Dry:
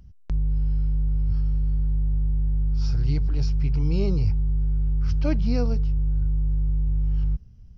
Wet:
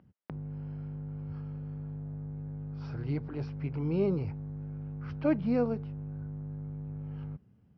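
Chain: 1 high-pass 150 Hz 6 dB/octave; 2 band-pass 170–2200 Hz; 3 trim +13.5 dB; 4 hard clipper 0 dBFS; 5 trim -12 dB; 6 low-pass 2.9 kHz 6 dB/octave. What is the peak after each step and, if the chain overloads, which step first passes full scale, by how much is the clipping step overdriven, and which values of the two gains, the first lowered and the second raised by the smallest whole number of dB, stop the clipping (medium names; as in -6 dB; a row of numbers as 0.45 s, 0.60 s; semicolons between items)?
-16.0 dBFS, -16.5 dBFS, -3.0 dBFS, -3.0 dBFS, -15.0 dBFS, -15.0 dBFS; nothing clips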